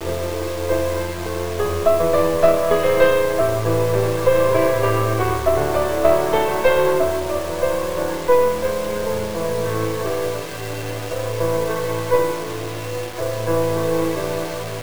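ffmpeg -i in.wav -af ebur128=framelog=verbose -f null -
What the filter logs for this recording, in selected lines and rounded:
Integrated loudness:
  I:         -19.9 LUFS
  Threshold: -29.9 LUFS
Loudness range:
  LRA:         6.0 LU
  Threshold: -39.6 LUFS
  LRA low:   -23.4 LUFS
  LRA high:  -17.4 LUFS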